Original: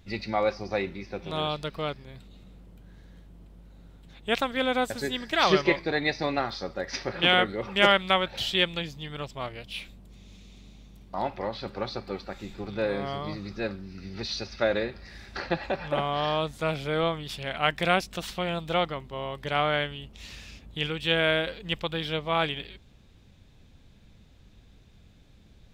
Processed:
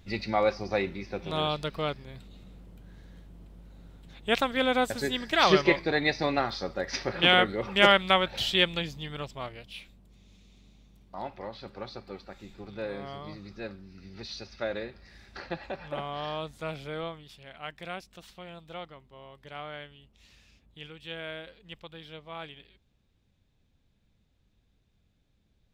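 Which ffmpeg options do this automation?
-af "volume=1.06,afade=t=out:st=8.95:d=0.87:silence=0.398107,afade=t=out:st=16.83:d=0.51:silence=0.421697"

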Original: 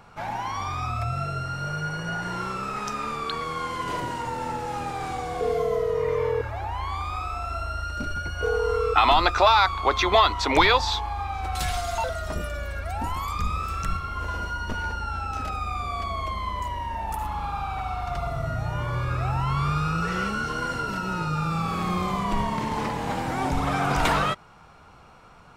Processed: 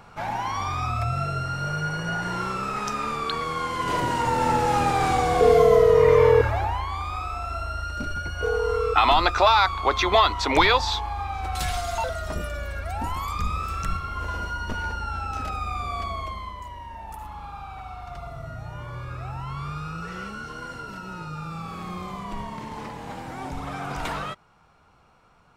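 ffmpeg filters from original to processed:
-af "volume=2.82,afade=t=in:st=3.73:d=0.85:silence=0.446684,afade=t=out:st=6.44:d=0.42:silence=0.354813,afade=t=out:st=16.02:d=0.55:silence=0.398107"

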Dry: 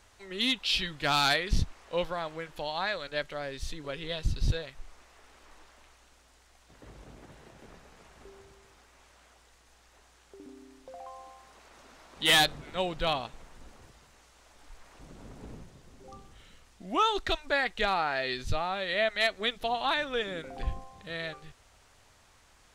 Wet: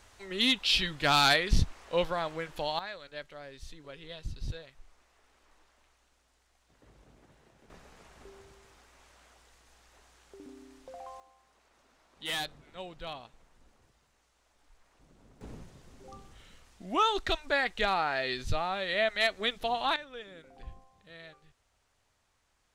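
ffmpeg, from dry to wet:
-af "asetnsamples=n=441:p=0,asendcmd='2.79 volume volume -9.5dB;7.7 volume volume -0.5dB;11.2 volume volume -12dB;15.41 volume volume -0.5dB;19.96 volume volume -13dB',volume=1.26"

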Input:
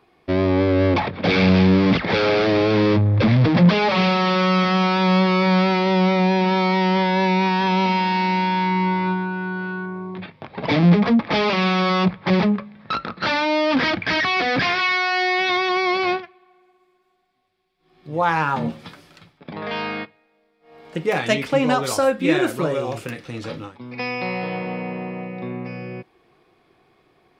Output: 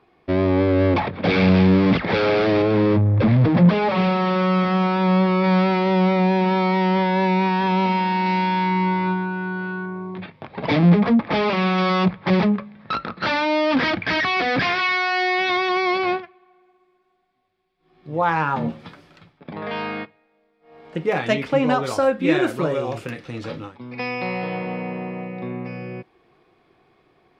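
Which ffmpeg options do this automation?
-af "asetnsamples=n=441:p=0,asendcmd='2.62 lowpass f 1400;5.44 lowpass f 2300;8.26 lowpass f 4600;10.78 lowpass f 2400;11.78 lowpass f 4500;15.98 lowpass f 2600;22.27 lowpass f 4500',lowpass=f=3100:p=1"

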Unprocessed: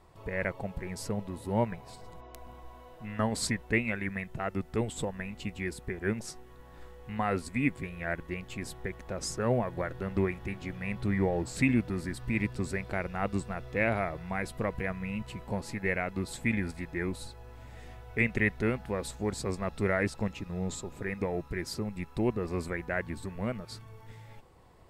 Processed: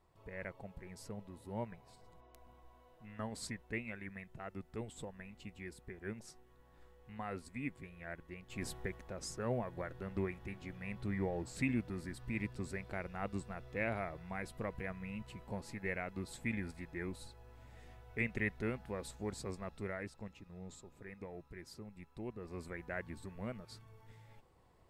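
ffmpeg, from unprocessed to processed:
-af "volume=1.68,afade=t=in:st=8.47:d=0.18:silence=0.281838,afade=t=out:st=8.65:d=0.47:silence=0.446684,afade=t=out:st=19.37:d=0.7:silence=0.446684,afade=t=in:st=22.3:d=0.6:silence=0.473151"

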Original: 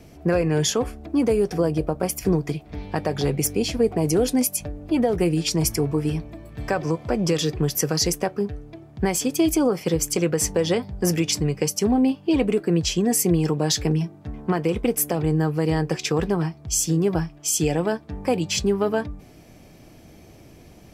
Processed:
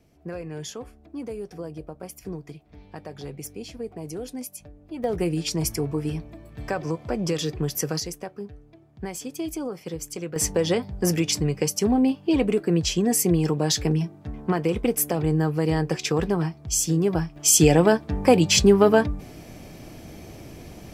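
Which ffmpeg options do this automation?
-af "asetnsamples=n=441:p=0,asendcmd='5.04 volume volume -4dB;8 volume volume -11dB;10.36 volume volume -1dB;17.36 volume volume 6dB',volume=0.2"

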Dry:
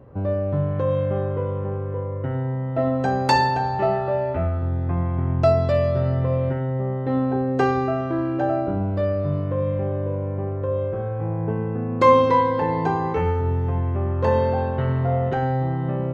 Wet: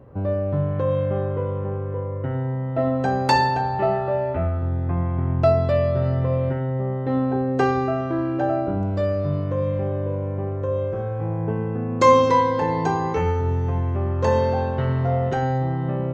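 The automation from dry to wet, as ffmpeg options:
-af "asetnsamples=n=441:p=0,asendcmd='3.61 equalizer g -6.5;6.02 equalizer g 2;8.83 equalizer g 14;15.58 equalizer g 7',equalizer=f=6600:t=o:w=0.89:g=-0.5"

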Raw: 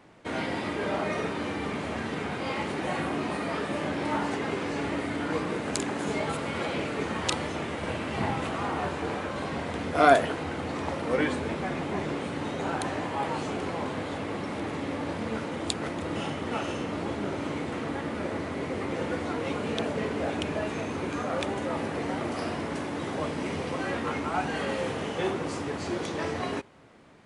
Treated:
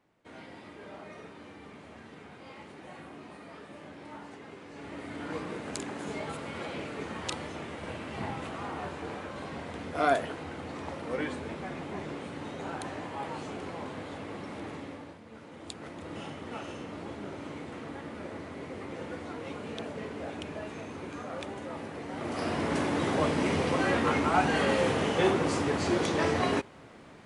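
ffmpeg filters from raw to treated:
-af "volume=6.68,afade=t=in:st=4.69:d=0.61:silence=0.334965,afade=t=out:st=14.71:d=0.51:silence=0.237137,afade=t=in:st=15.22:d=0.94:silence=0.281838,afade=t=in:st=22.1:d=0.7:silence=0.237137"

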